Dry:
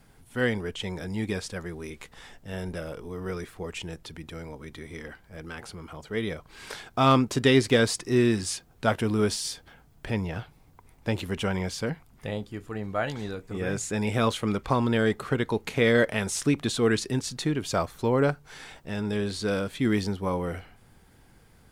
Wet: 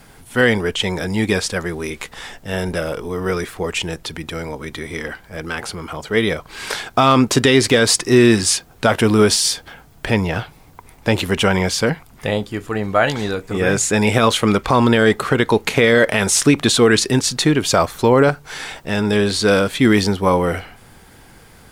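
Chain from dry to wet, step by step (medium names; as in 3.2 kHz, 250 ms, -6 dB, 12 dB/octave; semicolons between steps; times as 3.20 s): bass shelf 310 Hz -6 dB; loudness maximiser +16 dB; trim -1 dB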